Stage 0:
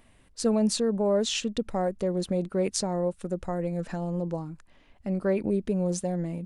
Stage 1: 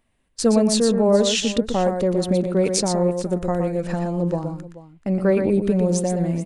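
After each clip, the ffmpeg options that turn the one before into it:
ffmpeg -i in.wav -filter_complex "[0:a]agate=range=-17dB:threshold=-47dB:ratio=16:detection=peak,asplit=2[link_01][link_02];[link_02]aecho=0:1:119|432:0.473|0.15[link_03];[link_01][link_03]amix=inputs=2:normalize=0,volume=7dB" out.wav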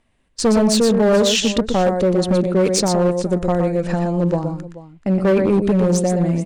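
ffmpeg -i in.wav -af "lowpass=8400,volume=15dB,asoftclip=hard,volume=-15dB,volume=4.5dB" out.wav

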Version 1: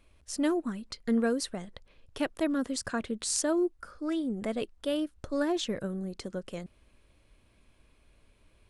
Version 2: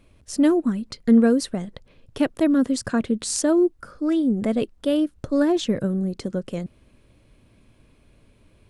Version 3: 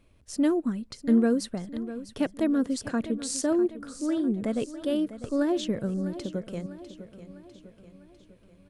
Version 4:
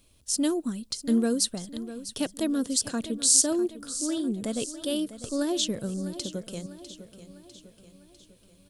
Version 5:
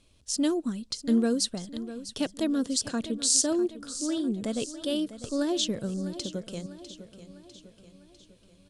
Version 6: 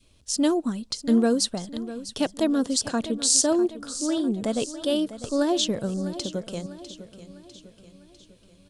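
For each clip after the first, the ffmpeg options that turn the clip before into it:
ffmpeg -i in.wav -af "equalizer=frequency=125:width_type=o:width=1:gain=9,equalizer=frequency=250:width_type=o:width=1:gain=6,equalizer=frequency=500:width_type=o:width=1:gain=3,volume=4dB" out.wav
ffmpeg -i in.wav -af "aecho=1:1:650|1300|1950|2600|3250:0.211|0.108|0.055|0.028|0.0143,volume=-6dB" out.wav
ffmpeg -i in.wav -af "aexciter=amount=5.3:drive=4:freq=3000,volume=-2.5dB" out.wav
ffmpeg -i in.wav -af "lowpass=7200" out.wav
ffmpeg -i in.wav -af "adynamicequalizer=threshold=0.00562:dfrequency=830:dqfactor=1.2:tfrequency=830:tqfactor=1.2:attack=5:release=100:ratio=0.375:range=3.5:mode=boostabove:tftype=bell,volume=3dB" out.wav

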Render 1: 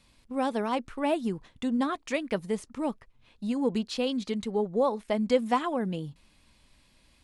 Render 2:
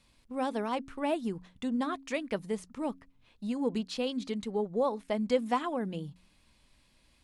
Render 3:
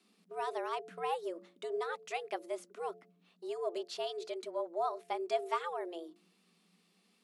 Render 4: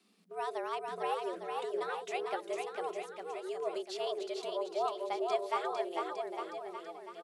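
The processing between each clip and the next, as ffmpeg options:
ffmpeg -i in.wav -af "bandreject=frequency=90.44:width_type=h:width=4,bandreject=frequency=180.88:width_type=h:width=4,bandreject=frequency=271.32:width_type=h:width=4,volume=-3.5dB" out.wav
ffmpeg -i in.wav -af "bandreject=frequency=130.9:width_type=h:width=4,bandreject=frequency=261.8:width_type=h:width=4,bandreject=frequency=392.7:width_type=h:width=4,bandreject=frequency=523.6:width_type=h:width=4,afreqshift=170,asubboost=boost=10:cutoff=69,volume=-4.5dB" out.wav
ffmpeg -i in.wav -af "aecho=1:1:450|855|1220|1548|1843:0.631|0.398|0.251|0.158|0.1" out.wav

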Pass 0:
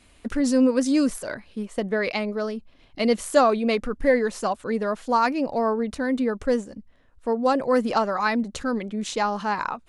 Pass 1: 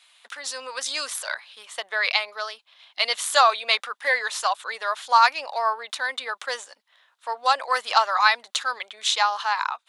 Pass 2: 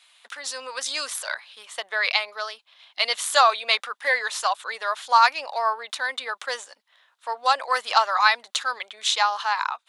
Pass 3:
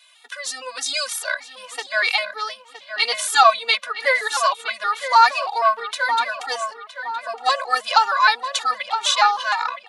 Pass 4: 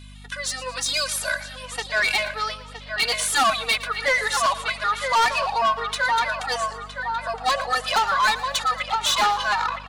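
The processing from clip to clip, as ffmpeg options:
ffmpeg -i in.wav -af "highpass=frequency=850:width=0.5412,highpass=frequency=850:width=1.3066,equalizer=frequency=3600:width=2.7:gain=9.5,dynaudnorm=framelen=260:gausssize=7:maxgain=7dB" out.wav
ffmpeg -i in.wav -af anull out.wav
ffmpeg -i in.wav -filter_complex "[0:a]asplit=2[link_01][link_02];[link_02]adelay=966,lowpass=frequency=2900:poles=1,volume=-9.5dB,asplit=2[link_03][link_04];[link_04]adelay=966,lowpass=frequency=2900:poles=1,volume=0.46,asplit=2[link_05][link_06];[link_06]adelay=966,lowpass=frequency=2900:poles=1,volume=0.46,asplit=2[link_07][link_08];[link_08]adelay=966,lowpass=frequency=2900:poles=1,volume=0.46,asplit=2[link_09][link_10];[link_10]adelay=966,lowpass=frequency=2900:poles=1,volume=0.46[link_11];[link_01][link_03][link_05][link_07][link_09][link_11]amix=inputs=6:normalize=0,alimiter=level_in=6dB:limit=-1dB:release=50:level=0:latency=1,afftfilt=real='re*gt(sin(2*PI*3.2*pts/sr)*(1-2*mod(floor(b*sr/1024/240),2)),0)':imag='im*gt(sin(2*PI*3.2*pts/sr)*(1-2*mod(floor(b*sr/1024/240),2)),0)':win_size=1024:overlap=0.75,volume=1dB" out.wav
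ffmpeg -i in.wav -af "aeval=exprs='val(0)+0.00708*(sin(2*PI*50*n/s)+sin(2*PI*2*50*n/s)/2+sin(2*PI*3*50*n/s)/3+sin(2*PI*4*50*n/s)/4+sin(2*PI*5*50*n/s)/5)':channel_layout=same,asoftclip=type=tanh:threshold=-17dB,aecho=1:1:114|228|342|456:0.158|0.0729|0.0335|0.0154,volume=1.5dB" out.wav

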